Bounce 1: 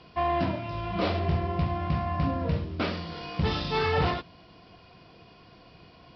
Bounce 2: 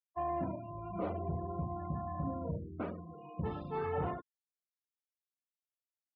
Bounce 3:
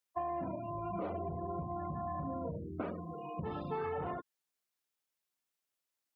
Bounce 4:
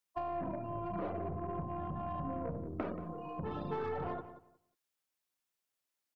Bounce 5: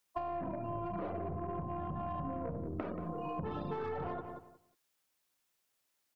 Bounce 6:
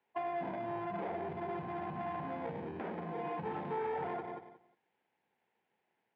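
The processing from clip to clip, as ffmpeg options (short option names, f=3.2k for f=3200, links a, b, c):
-af "highpass=f=110:p=1,afftfilt=real='re*gte(hypot(re,im),0.0316)':imag='im*gte(hypot(re,im),0.0316)':win_size=1024:overlap=0.75,lowpass=1.2k,volume=-8dB"
-af "alimiter=level_in=5.5dB:limit=-24dB:level=0:latency=1:release=44,volume=-5.5dB,acompressor=threshold=-41dB:ratio=6,lowshelf=f=130:g=-8,volume=7.5dB"
-filter_complex "[0:a]acrossover=split=740[a][b];[a]aeval=exprs='0.0473*(cos(1*acos(clip(val(0)/0.0473,-1,1)))-cos(1*PI/2))+0.0188*(cos(4*acos(clip(val(0)/0.0473,-1,1)))-cos(4*PI/2))+0.0133*(cos(6*acos(clip(val(0)/0.0473,-1,1)))-cos(6*PI/2))':c=same[c];[b]asoftclip=type=tanh:threshold=-39dB[d];[c][d]amix=inputs=2:normalize=0,asplit=2[e][f];[f]adelay=180,lowpass=f=2.5k:p=1,volume=-12dB,asplit=2[g][h];[h]adelay=180,lowpass=f=2.5k:p=1,volume=0.2,asplit=2[i][j];[j]adelay=180,lowpass=f=2.5k:p=1,volume=0.2[k];[e][g][i][k]amix=inputs=4:normalize=0"
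-af "acompressor=threshold=-43dB:ratio=6,volume=7.5dB"
-filter_complex "[0:a]asplit=2[a][b];[b]acrusher=samples=32:mix=1:aa=0.000001,volume=-5.5dB[c];[a][c]amix=inputs=2:normalize=0,asoftclip=type=tanh:threshold=-34dB,highpass=240,equalizer=f=290:t=q:w=4:g=-9,equalizer=f=590:t=q:w=4:g=-7,equalizer=f=840:t=q:w=4:g=7,equalizer=f=1.2k:t=q:w=4:g=-8,lowpass=f=2.5k:w=0.5412,lowpass=f=2.5k:w=1.3066,volume=4.5dB"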